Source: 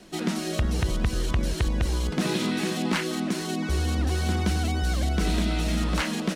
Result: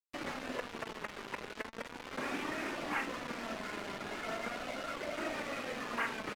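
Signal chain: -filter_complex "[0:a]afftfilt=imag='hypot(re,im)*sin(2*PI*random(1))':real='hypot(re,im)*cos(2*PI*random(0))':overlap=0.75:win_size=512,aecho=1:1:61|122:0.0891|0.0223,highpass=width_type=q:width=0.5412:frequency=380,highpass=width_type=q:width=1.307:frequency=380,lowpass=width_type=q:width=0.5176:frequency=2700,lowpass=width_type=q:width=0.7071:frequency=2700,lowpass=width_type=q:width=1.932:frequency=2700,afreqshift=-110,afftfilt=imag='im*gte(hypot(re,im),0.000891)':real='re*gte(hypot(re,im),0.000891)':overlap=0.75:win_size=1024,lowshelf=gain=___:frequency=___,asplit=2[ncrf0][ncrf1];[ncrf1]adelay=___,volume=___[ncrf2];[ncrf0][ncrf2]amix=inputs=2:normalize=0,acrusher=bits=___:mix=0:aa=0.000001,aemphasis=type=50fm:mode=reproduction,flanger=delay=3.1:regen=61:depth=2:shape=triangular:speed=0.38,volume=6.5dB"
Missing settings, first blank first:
-9, 360, 47, -11dB, 6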